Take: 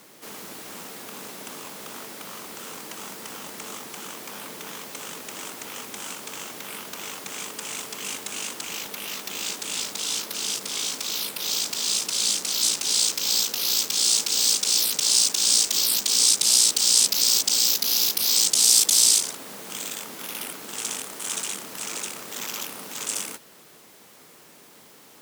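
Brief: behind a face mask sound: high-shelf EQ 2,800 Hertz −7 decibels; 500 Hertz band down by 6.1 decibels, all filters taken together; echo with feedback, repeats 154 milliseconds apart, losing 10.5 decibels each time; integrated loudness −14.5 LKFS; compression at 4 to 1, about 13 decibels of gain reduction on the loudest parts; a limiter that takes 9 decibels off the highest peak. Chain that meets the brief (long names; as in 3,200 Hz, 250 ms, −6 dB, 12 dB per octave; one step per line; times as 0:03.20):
parametric band 500 Hz −7.5 dB
downward compressor 4 to 1, threshold −30 dBFS
brickwall limiter −23 dBFS
high-shelf EQ 2,800 Hz −7 dB
repeating echo 154 ms, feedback 30%, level −10.5 dB
level +23.5 dB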